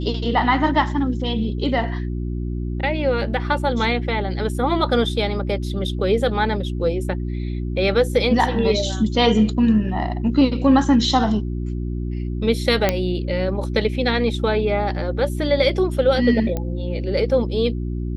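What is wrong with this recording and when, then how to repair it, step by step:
mains hum 60 Hz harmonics 6 −25 dBFS
0:12.89: click −3 dBFS
0:16.57: click −12 dBFS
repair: click removal
hum removal 60 Hz, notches 6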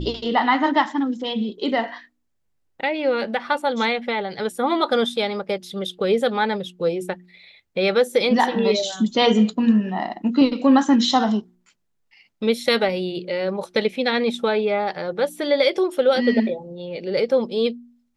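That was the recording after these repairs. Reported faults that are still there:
none of them is left

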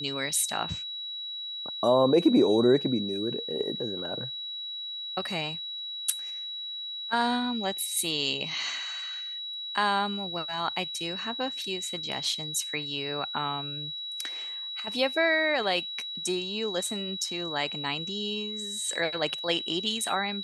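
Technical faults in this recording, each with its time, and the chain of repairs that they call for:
whistle 3,900 Hz −34 dBFS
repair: notch filter 3,900 Hz, Q 30

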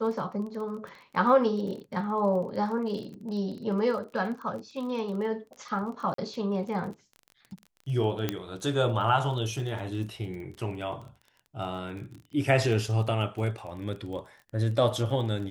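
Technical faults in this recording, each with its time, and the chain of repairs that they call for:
surface crackle 25 per second −37 dBFS
0:06.14–0:06.18: drop-out 43 ms
0:08.29: click −13 dBFS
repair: click removal
repair the gap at 0:06.14, 43 ms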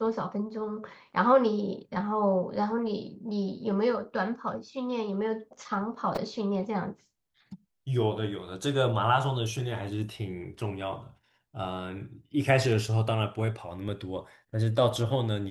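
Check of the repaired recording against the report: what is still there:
none of them is left

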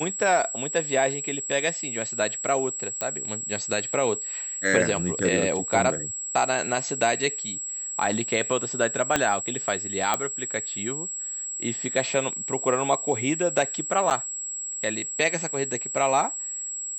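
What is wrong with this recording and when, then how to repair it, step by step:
whistle 7,700 Hz −30 dBFS
0:03.01: click −11 dBFS
0:09.16: click −5 dBFS
0:10.14: click −8 dBFS
0:14.10–0:14.11: drop-out 8.6 ms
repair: click removal
notch filter 7,700 Hz, Q 30
repair the gap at 0:14.10, 8.6 ms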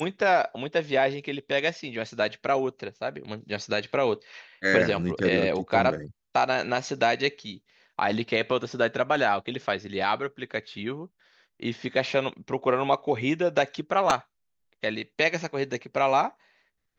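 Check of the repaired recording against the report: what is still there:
0:09.16: click

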